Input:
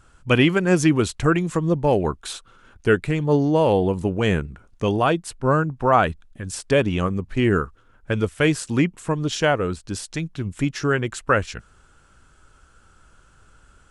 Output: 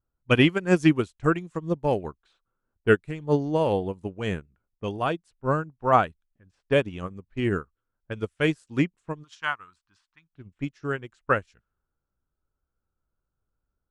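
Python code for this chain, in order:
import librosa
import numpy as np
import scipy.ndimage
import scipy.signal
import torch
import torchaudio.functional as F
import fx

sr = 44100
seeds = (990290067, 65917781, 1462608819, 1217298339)

y = fx.env_lowpass(x, sr, base_hz=800.0, full_db=-19.0)
y = fx.low_shelf_res(y, sr, hz=750.0, db=-12.5, q=3.0, at=(9.23, 10.32), fade=0.02)
y = fx.upward_expand(y, sr, threshold_db=-31.0, expansion=2.5)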